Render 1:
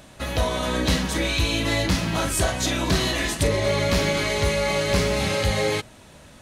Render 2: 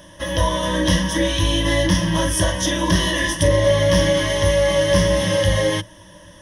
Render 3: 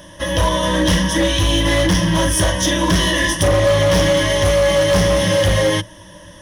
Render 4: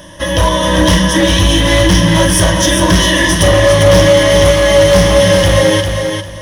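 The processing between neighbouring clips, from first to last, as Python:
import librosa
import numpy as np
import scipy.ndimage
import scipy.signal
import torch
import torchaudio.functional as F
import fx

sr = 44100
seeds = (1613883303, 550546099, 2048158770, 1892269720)

y1 = fx.ripple_eq(x, sr, per_octave=1.2, db=17)
y2 = np.clip(y1, -10.0 ** (-14.5 / 20.0), 10.0 ** (-14.5 / 20.0))
y2 = y2 * librosa.db_to_amplitude(4.0)
y3 = fx.echo_feedback(y2, sr, ms=400, feedback_pct=24, wet_db=-6)
y3 = y3 * librosa.db_to_amplitude(5.0)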